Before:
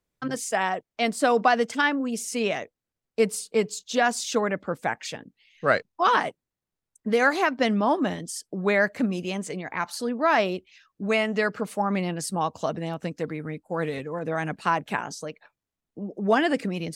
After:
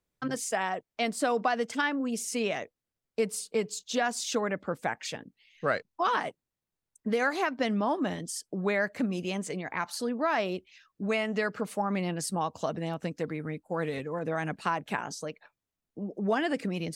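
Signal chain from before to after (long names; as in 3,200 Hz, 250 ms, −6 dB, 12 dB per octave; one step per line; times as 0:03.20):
downward compressor 2 to 1, threshold −25 dBFS, peak gain reduction 6 dB
level −2 dB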